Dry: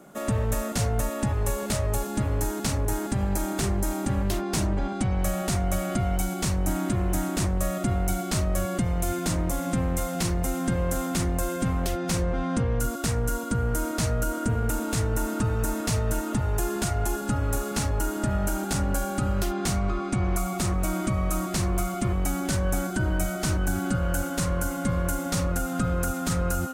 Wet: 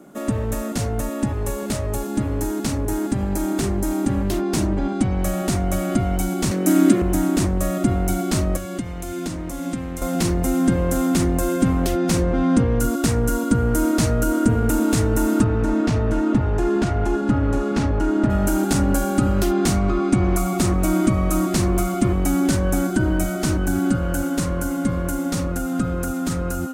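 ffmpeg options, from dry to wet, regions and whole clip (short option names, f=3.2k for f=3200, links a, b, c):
-filter_complex "[0:a]asettb=1/sr,asplit=3[a][b][c];[a]atrim=end=6.514[d];[b]atrim=start=6.51:end=7.02,asetpts=PTS-STARTPTS,afade=t=in:d=0.004:c=qsin,afade=t=out:st=0.506:d=0.004:c=qsin,highpass=f=200:w=0.5412,highpass=f=200:w=1.3066,equalizer=f=870:t=o:w=0.61:g=-9.5,acontrast=43[e];[c]atrim=start=7.016[f];[d][e]acrossfade=d=0.004:c1=hsin:c2=qsin[g];[g][f]acrossfade=d=0.004:c1=qsin:c2=hsin,asettb=1/sr,asplit=3[h][i][j];[h]atrim=end=8.564[k];[i]atrim=start=8.56:end=10.02,asetpts=PTS-STARTPTS,afade=t=in:d=0.004:c=qsin,afade=t=out:st=1.456:d=0.004:c=qsin,highshelf=f=7.8k:g=-6.5,acrossover=split=940|2000[l][m][n];[l]acompressor=threshold=-34dB:ratio=4[o];[m]acompressor=threshold=-49dB:ratio=4[p];[n]acompressor=threshold=-39dB:ratio=4[q];[o][p][q]amix=inputs=3:normalize=0[r];[j]atrim=start=10.016[s];[k][r]acrossfade=d=0.004:c1=hsin:c2=qsin[t];[t][s]acrossfade=d=0.004:c1=qsin:c2=hsin,asettb=1/sr,asplit=3[u][v][w];[u]atrim=end=15.444[x];[v]atrim=start=15.44:end=18.3,asetpts=PTS-STARTPTS,afade=t=in:d=0.004:c=qsin,afade=t=out:st=2.856:d=0.004:c=qsin,asoftclip=type=hard:threshold=-20.5dB,adynamicsmooth=sensitivity=1:basefreq=3.7k[y];[w]atrim=start=18.296[z];[x][y]acrossfade=d=0.004:c1=hsin:c2=qsin[aa];[aa][z]acrossfade=d=0.004:c1=qsin:c2=hsin,equalizer=f=290:t=o:w=0.94:g=9,dynaudnorm=f=800:g=11:m=5dB"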